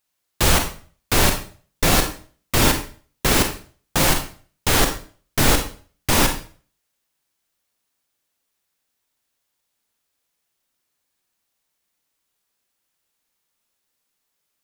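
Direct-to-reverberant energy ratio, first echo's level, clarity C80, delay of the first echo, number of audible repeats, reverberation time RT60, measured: 5.0 dB, no echo, 13.0 dB, no echo, no echo, 0.45 s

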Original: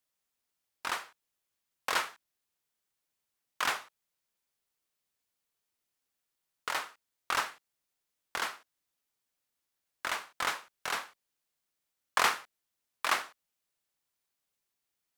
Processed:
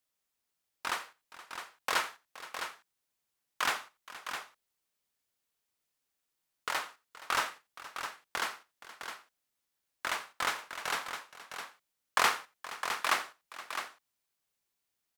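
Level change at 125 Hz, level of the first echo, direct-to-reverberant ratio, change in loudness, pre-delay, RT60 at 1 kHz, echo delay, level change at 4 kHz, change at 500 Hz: +0.5 dB, -20.0 dB, no reverb, -1.5 dB, no reverb, no reverb, 87 ms, +0.5 dB, +0.5 dB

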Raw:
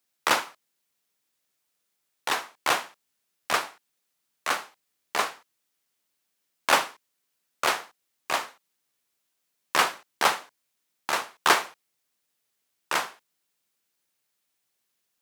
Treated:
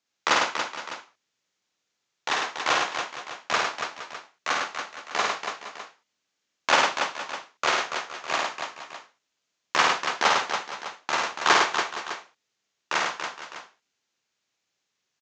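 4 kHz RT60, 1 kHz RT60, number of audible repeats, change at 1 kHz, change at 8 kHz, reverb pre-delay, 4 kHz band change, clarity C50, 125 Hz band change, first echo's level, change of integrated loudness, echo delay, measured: no reverb, no reverb, 5, +2.5 dB, +0.5 dB, no reverb, +3.0 dB, no reverb, +2.5 dB, -3.5 dB, +1.0 dB, 52 ms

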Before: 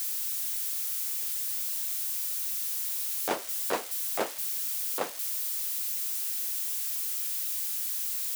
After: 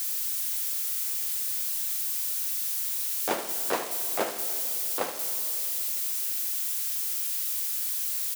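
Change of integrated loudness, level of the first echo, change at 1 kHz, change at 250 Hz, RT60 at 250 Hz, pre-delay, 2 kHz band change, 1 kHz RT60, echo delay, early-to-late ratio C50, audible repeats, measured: +2.0 dB, -11.0 dB, +2.5 dB, +2.5 dB, 3.3 s, 20 ms, +2.5 dB, 2.6 s, 74 ms, 7.5 dB, 1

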